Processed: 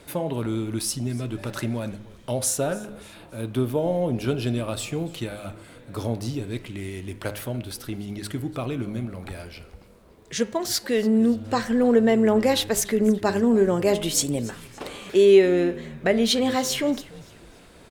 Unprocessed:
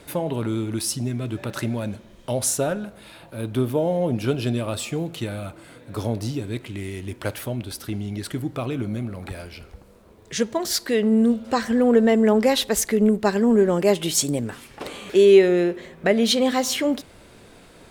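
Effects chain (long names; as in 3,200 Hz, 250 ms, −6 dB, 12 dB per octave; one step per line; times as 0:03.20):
hum removal 103.5 Hz, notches 29
echo with shifted repeats 288 ms, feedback 40%, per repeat −120 Hz, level −21 dB
level −1.5 dB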